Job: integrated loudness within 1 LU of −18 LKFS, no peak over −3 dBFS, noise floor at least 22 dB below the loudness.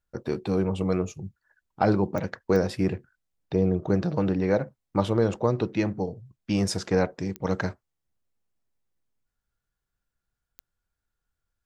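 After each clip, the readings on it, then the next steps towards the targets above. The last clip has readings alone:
number of clicks 4; integrated loudness −27.0 LKFS; sample peak −7.0 dBFS; target loudness −18.0 LKFS
→ click removal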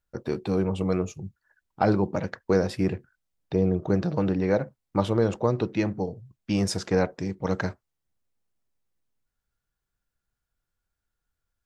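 number of clicks 0; integrated loudness −27.0 LKFS; sample peak −7.0 dBFS; target loudness −18.0 LKFS
→ level +9 dB
brickwall limiter −3 dBFS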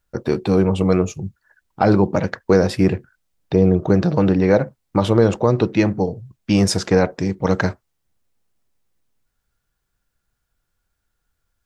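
integrated loudness −18.5 LKFS; sample peak −3.0 dBFS; background noise floor −75 dBFS

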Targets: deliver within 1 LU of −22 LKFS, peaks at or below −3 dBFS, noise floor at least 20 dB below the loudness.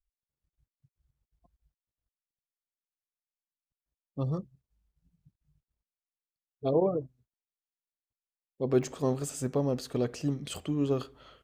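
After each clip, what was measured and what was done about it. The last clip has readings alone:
number of dropouts 1; longest dropout 2.1 ms; integrated loudness −31.5 LKFS; sample peak −13.5 dBFS; target loudness −22.0 LKFS
→ repair the gap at 0:08.83, 2.1 ms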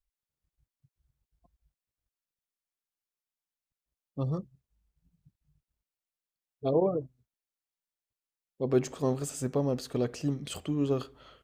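number of dropouts 0; integrated loudness −31.5 LKFS; sample peak −13.5 dBFS; target loudness −22.0 LKFS
→ level +9.5 dB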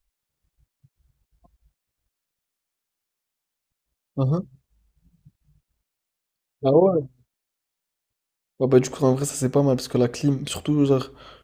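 integrated loudness −22.0 LKFS; sample peak −4.0 dBFS; background noise floor −84 dBFS

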